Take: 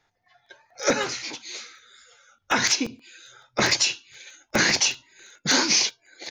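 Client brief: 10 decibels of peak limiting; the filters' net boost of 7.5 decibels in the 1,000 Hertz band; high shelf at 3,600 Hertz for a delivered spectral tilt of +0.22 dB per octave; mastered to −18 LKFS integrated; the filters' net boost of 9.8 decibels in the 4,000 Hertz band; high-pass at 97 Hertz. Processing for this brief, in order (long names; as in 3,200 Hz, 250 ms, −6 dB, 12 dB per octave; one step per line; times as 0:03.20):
high-pass filter 97 Hz
parametric band 1,000 Hz +8.5 dB
high-shelf EQ 3,600 Hz +6.5 dB
parametric band 4,000 Hz +7 dB
level +2 dB
brickwall limiter −6.5 dBFS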